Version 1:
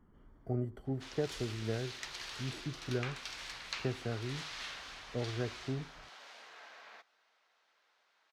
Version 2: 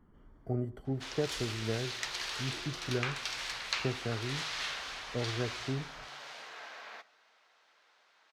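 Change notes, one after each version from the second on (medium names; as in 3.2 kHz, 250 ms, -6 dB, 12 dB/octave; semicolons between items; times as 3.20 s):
background +4.0 dB; reverb: on, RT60 0.95 s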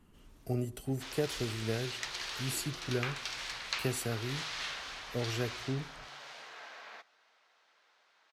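speech: remove Savitzky-Golay filter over 41 samples; background: send -11.0 dB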